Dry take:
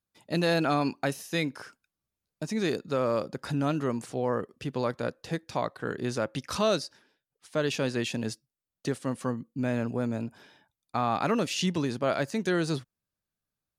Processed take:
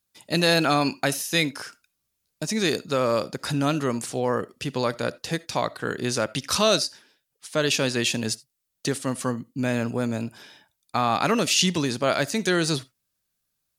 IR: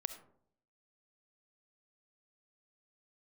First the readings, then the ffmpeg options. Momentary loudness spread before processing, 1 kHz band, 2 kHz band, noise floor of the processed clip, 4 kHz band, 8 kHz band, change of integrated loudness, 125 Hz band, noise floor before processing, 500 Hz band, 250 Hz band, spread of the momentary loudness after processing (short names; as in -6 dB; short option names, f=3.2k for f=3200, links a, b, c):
9 LU, +5.0 dB, +7.5 dB, -78 dBFS, +11.0 dB, +13.0 dB, +5.5 dB, +3.5 dB, under -85 dBFS, +4.0 dB, +3.5 dB, 10 LU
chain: -filter_complex "[0:a]highshelf=f=2.4k:g=10.5,asplit=2[a][b];[1:a]atrim=start_sample=2205,afade=t=out:st=0.14:d=0.01,atrim=end_sample=6615[c];[b][c]afir=irnorm=-1:irlink=0,volume=-5dB[d];[a][d]amix=inputs=2:normalize=0"